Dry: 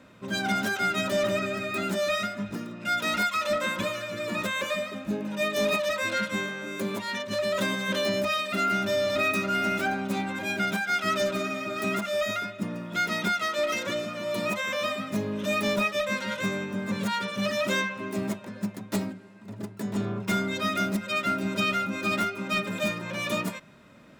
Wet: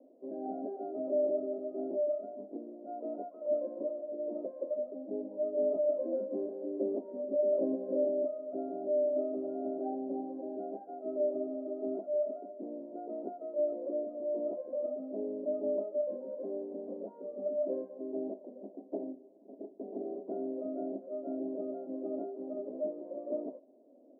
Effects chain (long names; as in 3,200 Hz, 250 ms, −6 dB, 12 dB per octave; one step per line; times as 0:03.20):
Chebyshev band-pass filter 260–720 Hz, order 4
0:05.76–0:08.05: low-shelf EQ 450 Hz +7.5 dB
level −2 dB